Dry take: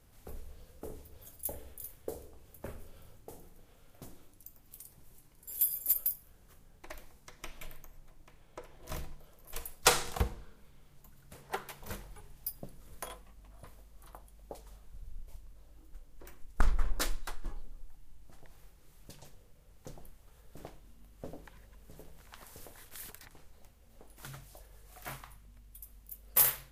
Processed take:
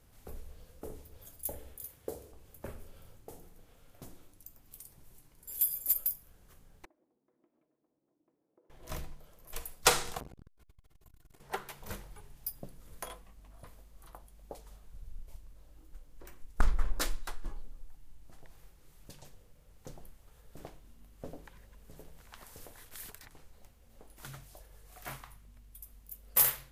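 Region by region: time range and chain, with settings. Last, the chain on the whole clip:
0:01.75–0:02.32: high-pass filter 56 Hz + one half of a high-frequency compander encoder only
0:06.85–0:08.70: downward compressor 10 to 1, threshold −48 dBFS + four-pole ladder band-pass 350 Hz, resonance 50%
0:10.19–0:11.41: comb filter 2.8 ms, depth 64% + downward compressor 2 to 1, threshold −41 dBFS + saturating transformer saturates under 690 Hz
whole clip: no processing

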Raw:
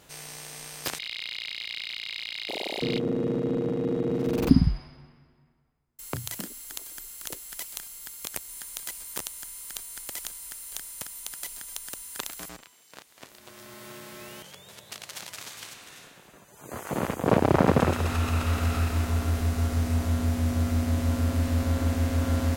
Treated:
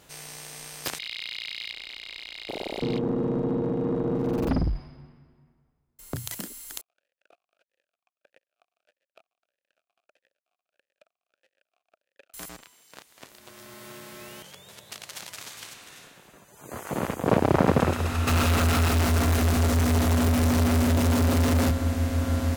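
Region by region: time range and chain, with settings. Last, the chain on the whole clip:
0:01.71–0:06.16: tilt shelving filter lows +4.5 dB, about 1,100 Hz + tube saturation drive 20 dB, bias 0.4
0:06.81–0:12.34: gap after every zero crossing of 0.11 ms + formant filter swept between two vowels a-e 1.6 Hz
0:18.27–0:21.71: high-pass filter 88 Hz + power curve on the samples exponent 0.35
whole clip: no processing

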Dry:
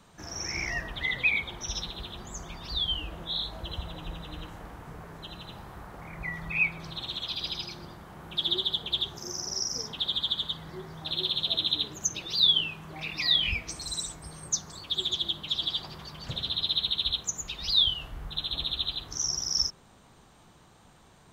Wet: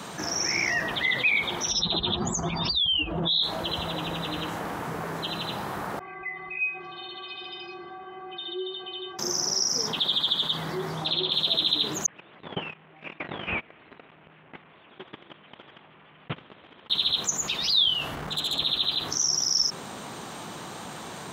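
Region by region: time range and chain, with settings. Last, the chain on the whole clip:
0:01.71–0:03.43: expanding power law on the bin magnitudes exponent 1.8 + envelope flattener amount 70%
0:05.99–0:09.19: low-pass filter 2,800 Hz 24 dB per octave + stiff-string resonator 370 Hz, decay 0.31 s, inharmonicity 0.008
0:10.90–0:11.32: treble cut that deepens with the level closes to 2,400 Hz, closed at −25.5 dBFS + parametric band 1,700 Hz −5 dB 0.39 octaves
0:12.06–0:16.90: linear delta modulator 16 kbit/s, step −36.5 dBFS + noise gate −35 dBFS, range −44 dB
0:18.15–0:18.59: parametric band 12,000 Hz −12 dB 0.35 octaves + tube saturation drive 30 dB, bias 0.4
whole clip: high-pass filter 180 Hz 12 dB per octave; envelope flattener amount 50%

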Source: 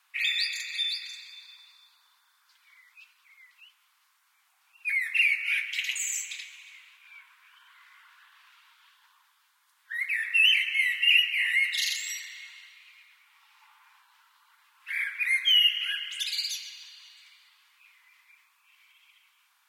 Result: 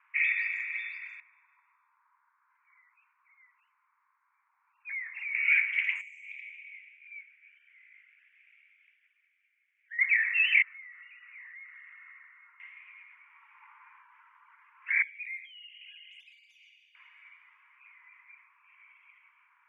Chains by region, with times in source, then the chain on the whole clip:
0:01.20–0:05.35: low-pass filter 1,200 Hz + tube saturation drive 36 dB, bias 0.5
0:06.01–0:09.99: elliptic band-pass filter 2,200–9,100 Hz + downward compressor 5 to 1, threshold −40 dBFS
0:10.62–0:12.60: transistor ladder low-pass 1,500 Hz, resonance 65% + downward compressor 5 to 1, threshold −51 dBFS
0:15.02–0:16.95: Butterworth high-pass 2,900 Hz + downward compressor 8 to 1, threshold −37 dBFS
whole clip: elliptic band-pass filter 950–2,300 Hz, stop band 40 dB; parametric band 1,500 Hz −6 dB 0.92 octaves; level +8.5 dB

